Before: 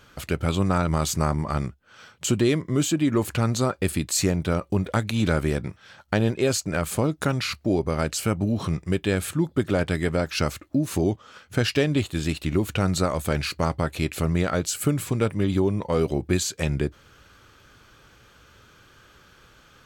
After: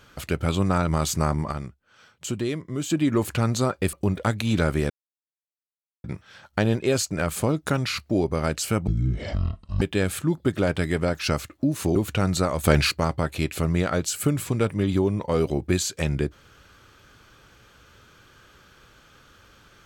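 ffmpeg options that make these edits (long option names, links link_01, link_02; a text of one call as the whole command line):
ffmpeg -i in.wav -filter_complex "[0:a]asplit=10[link_01][link_02][link_03][link_04][link_05][link_06][link_07][link_08][link_09][link_10];[link_01]atrim=end=1.522[link_11];[link_02]atrim=start=1.518:end=2.902,asetpts=PTS-STARTPTS,volume=-6.5dB[link_12];[link_03]atrim=start=2.898:end=3.932[link_13];[link_04]atrim=start=4.618:end=5.59,asetpts=PTS-STARTPTS,afade=type=out:start_time=0.968:duration=0.004:curve=hsin,apad=pad_dur=1.14[link_14];[link_05]atrim=start=5.59:end=8.424,asetpts=PTS-STARTPTS,afade=type=in:duration=0.004:curve=hsin[link_15];[link_06]atrim=start=8.42:end=8.93,asetpts=PTS-STARTPTS,asetrate=23814,aresample=44100[link_16];[link_07]atrim=start=8.926:end=11.072[link_17];[link_08]atrim=start=12.558:end=13.242[link_18];[link_09]atrim=start=13.238:end=13.522,asetpts=PTS-STARTPTS,volume=6.5dB[link_19];[link_10]atrim=start=13.518[link_20];[link_11][link_12]acrossfade=duration=0.004:curve1=hsin:curve2=hsin[link_21];[link_21][link_13]acrossfade=duration=0.004:curve1=hsin:curve2=hsin[link_22];[link_14][link_15]concat=n=2:v=0:a=1[link_23];[link_22][link_23]acrossfade=duration=0.004:curve1=hsin:curve2=hsin[link_24];[link_24][link_16]acrossfade=duration=0.004:curve1=hsin:curve2=hsin[link_25];[link_25][link_17]acrossfade=duration=0.004:curve1=hsin:curve2=hsin[link_26];[link_26][link_18]acrossfade=duration=0.004:curve1=hsin:curve2=hsin[link_27];[link_27][link_19]acrossfade=duration=0.004:curve1=hsin:curve2=hsin[link_28];[link_28][link_20]acrossfade=duration=0.004:curve1=hsin:curve2=hsin" out.wav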